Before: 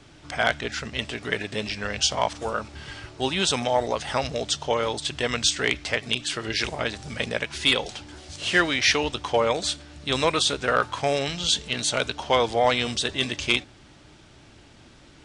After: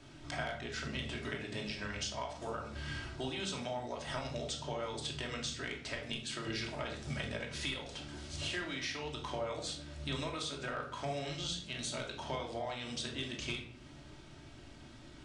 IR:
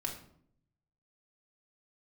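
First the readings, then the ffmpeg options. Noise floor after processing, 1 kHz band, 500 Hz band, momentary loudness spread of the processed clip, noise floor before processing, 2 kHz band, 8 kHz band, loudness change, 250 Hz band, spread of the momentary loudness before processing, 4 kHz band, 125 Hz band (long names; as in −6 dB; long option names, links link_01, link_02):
−54 dBFS, −15.5 dB, −15.5 dB, 7 LU, −51 dBFS, −15.0 dB, −15.5 dB, −15.0 dB, −11.0 dB, 9 LU, −15.0 dB, −8.0 dB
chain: -filter_complex "[0:a]acompressor=threshold=-31dB:ratio=12[link_01];[1:a]atrim=start_sample=2205[link_02];[link_01][link_02]afir=irnorm=-1:irlink=0,volume=-5.5dB"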